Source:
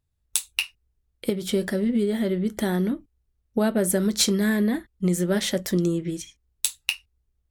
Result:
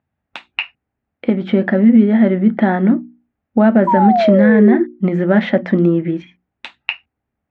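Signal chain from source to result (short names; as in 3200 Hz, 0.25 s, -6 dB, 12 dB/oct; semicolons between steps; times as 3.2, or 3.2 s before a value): speaker cabinet 180–2200 Hz, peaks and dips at 230 Hz +5 dB, 420 Hz -8 dB, 760 Hz +5 dB, 1100 Hz -3 dB; painted sound fall, 3.87–4.84, 330–1000 Hz -26 dBFS; notches 60/120/180/240/300/360 Hz; maximiser +13.5 dB; gain -1 dB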